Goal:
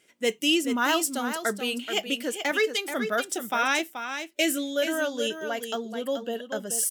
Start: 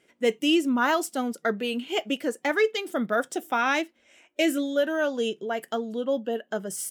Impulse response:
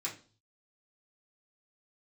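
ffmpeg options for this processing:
-filter_complex "[0:a]highshelf=f=2600:g=11.5,asplit=2[s0][s1];[s1]aecho=0:1:430:0.376[s2];[s0][s2]amix=inputs=2:normalize=0,volume=0.668"

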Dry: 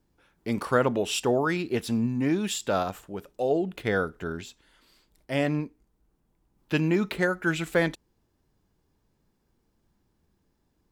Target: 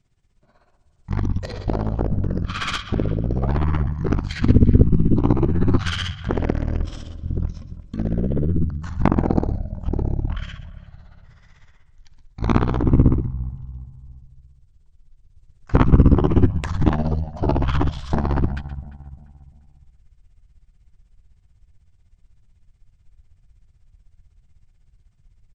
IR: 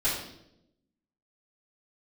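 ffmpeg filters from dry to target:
-filter_complex "[0:a]asetrate=18846,aresample=44100,asplit=2[s0][s1];[s1]aecho=0:1:122:0.188[s2];[s0][s2]amix=inputs=2:normalize=0,tremolo=f=16:d=0.7,equalizer=f=520:w=1.5:g=-3.5,acompressor=threshold=0.0501:ratio=6,asubboost=boost=7:cutoff=100,asplit=2[s3][s4];[s4]adelay=347,lowpass=f=1300:p=1,volume=0.178,asplit=2[s5][s6];[s6]adelay=347,lowpass=f=1300:p=1,volume=0.44,asplit=2[s7][s8];[s8]adelay=347,lowpass=f=1300:p=1,volume=0.44,asplit=2[s9][s10];[s10]adelay=347,lowpass=f=1300:p=1,volume=0.44[s11];[s5][s7][s9][s11]amix=inputs=4:normalize=0[s12];[s3][s12]amix=inputs=2:normalize=0,aeval=exprs='0.447*(cos(1*acos(clip(val(0)/0.447,-1,1)))-cos(1*PI/2))+0.141*(cos(7*acos(clip(val(0)/0.447,-1,1)))-cos(7*PI/2))+0.0794*(cos(8*acos(clip(val(0)/0.447,-1,1)))-cos(8*PI/2))':c=same,volume=1.88"

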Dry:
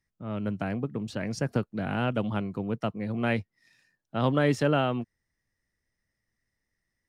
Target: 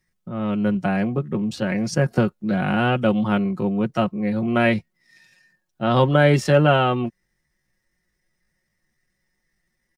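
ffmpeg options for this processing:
-af "aecho=1:1:5.5:0.6,atempo=0.71,volume=2.37"

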